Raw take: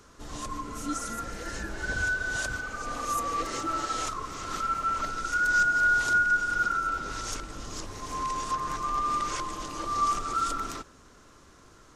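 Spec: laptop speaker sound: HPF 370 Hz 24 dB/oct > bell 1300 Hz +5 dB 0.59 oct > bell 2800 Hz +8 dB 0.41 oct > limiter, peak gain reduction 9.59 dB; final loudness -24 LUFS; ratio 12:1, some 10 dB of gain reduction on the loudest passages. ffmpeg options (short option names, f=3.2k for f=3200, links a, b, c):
-af "acompressor=threshold=-30dB:ratio=12,highpass=f=370:w=0.5412,highpass=f=370:w=1.3066,equalizer=f=1.3k:t=o:w=0.59:g=5,equalizer=f=2.8k:t=o:w=0.41:g=8,volume=11dB,alimiter=limit=-18dB:level=0:latency=1"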